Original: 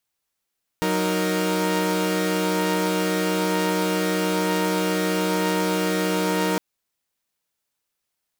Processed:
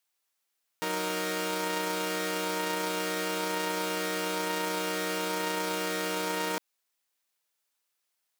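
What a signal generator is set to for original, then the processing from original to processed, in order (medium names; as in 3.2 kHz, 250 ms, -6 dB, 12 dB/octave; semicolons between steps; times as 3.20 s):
chord F#3/D#4/A#4 saw, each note -22.5 dBFS 5.76 s
peak limiter -20 dBFS; high-pass 610 Hz 6 dB/octave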